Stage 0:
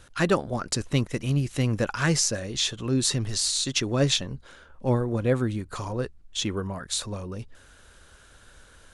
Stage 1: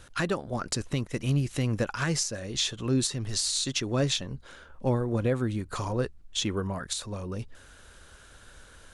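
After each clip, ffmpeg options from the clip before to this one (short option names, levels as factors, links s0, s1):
-af "alimiter=limit=0.133:level=0:latency=1:release=411,volume=1.12"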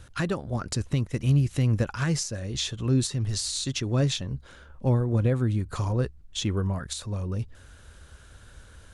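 -af "equalizer=f=78:w=0.54:g=10.5,volume=0.794"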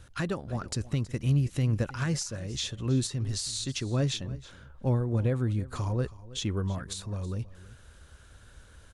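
-af "aecho=1:1:322:0.119,volume=0.668"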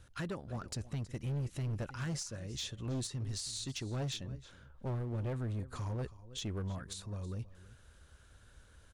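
-af "volume=20,asoftclip=hard,volume=0.0501,volume=0.447"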